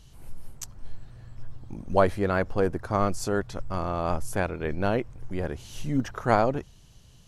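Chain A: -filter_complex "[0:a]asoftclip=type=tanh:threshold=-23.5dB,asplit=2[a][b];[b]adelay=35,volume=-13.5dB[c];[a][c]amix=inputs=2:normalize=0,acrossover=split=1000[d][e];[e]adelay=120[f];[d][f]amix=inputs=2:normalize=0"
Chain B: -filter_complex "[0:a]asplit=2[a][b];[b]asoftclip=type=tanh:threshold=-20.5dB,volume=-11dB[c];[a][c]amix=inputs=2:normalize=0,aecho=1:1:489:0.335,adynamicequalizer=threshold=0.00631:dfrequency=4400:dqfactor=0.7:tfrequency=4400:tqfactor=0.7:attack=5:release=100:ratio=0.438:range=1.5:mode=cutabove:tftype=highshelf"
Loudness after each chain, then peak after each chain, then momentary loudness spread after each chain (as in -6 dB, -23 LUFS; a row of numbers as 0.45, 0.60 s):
-33.0, -26.0 LUFS; -18.0, -6.0 dBFS; 18, 18 LU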